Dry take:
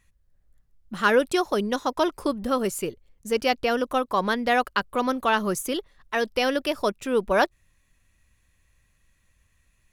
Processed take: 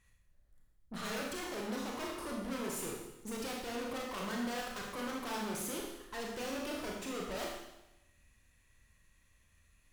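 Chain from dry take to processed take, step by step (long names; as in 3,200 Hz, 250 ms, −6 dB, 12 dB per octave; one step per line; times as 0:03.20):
wrap-around overflow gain 13 dB
tube saturation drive 40 dB, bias 0.7
four-comb reverb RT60 0.94 s, combs from 26 ms, DRR −2 dB
level −1.5 dB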